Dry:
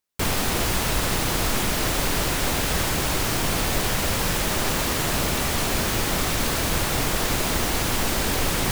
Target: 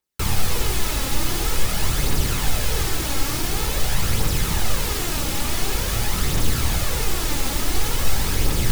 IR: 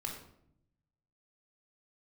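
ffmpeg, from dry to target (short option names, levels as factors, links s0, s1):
-filter_complex "[0:a]aphaser=in_gain=1:out_gain=1:delay=3.8:decay=0.46:speed=0.47:type=triangular,acrossover=split=200|3000[s0][s1][s2];[s1]acompressor=threshold=0.0398:ratio=6[s3];[s0][s3][s2]amix=inputs=3:normalize=0,asplit=2[s4][s5];[1:a]atrim=start_sample=2205[s6];[s5][s6]afir=irnorm=-1:irlink=0,volume=1.19[s7];[s4][s7]amix=inputs=2:normalize=0,volume=0.473"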